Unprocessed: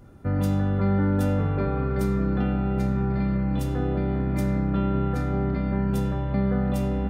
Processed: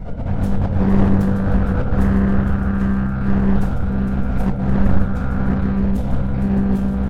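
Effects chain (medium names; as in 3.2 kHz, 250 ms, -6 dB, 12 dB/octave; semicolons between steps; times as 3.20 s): wind noise 370 Hz -25 dBFS; multi-head delay 154 ms, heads first and third, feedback 71%, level -10 dB; slow attack 133 ms; bass shelf 120 Hz +6.5 dB; comb 1.4 ms, depth 71%; transient shaper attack +1 dB, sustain -11 dB; simulated room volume 440 m³, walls furnished, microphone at 1.8 m; loudspeaker Doppler distortion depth 0.62 ms; trim -5.5 dB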